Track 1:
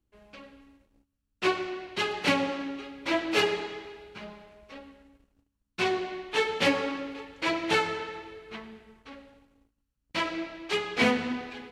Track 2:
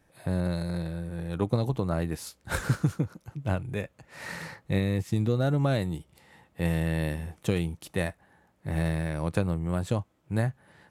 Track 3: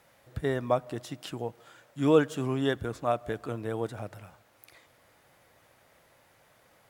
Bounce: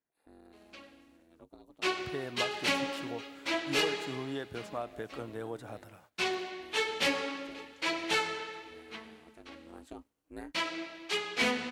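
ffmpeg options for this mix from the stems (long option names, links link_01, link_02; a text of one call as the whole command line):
ffmpeg -i stem1.wav -i stem2.wav -i stem3.wav -filter_complex "[0:a]highshelf=frequency=2700:gain=8.5,adelay=400,volume=-5.5dB[link_01];[1:a]aeval=exprs='val(0)*sin(2*PI*160*n/s)':channel_layout=same,volume=-12dB,afade=type=in:start_time=9.38:duration=0.72:silence=0.266073[link_02];[2:a]agate=range=-17dB:threshold=-55dB:ratio=16:detection=peak,acompressor=threshold=-28dB:ratio=6,adelay=1700,volume=-4dB[link_03];[link_01][link_02][link_03]amix=inputs=3:normalize=0,highpass=frequency=180:poles=1,asoftclip=type=tanh:threshold=-19dB" out.wav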